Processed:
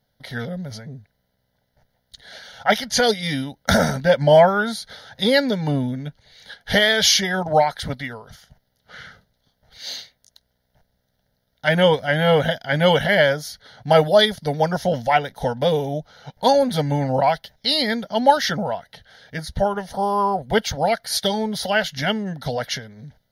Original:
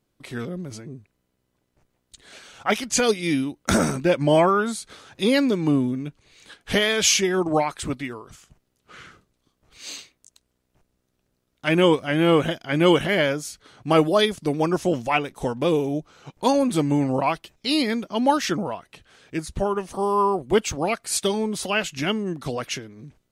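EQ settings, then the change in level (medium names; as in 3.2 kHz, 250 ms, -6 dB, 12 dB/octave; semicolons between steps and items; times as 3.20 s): bass shelf 91 Hz -5.5 dB; static phaser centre 1.7 kHz, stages 8; +7.5 dB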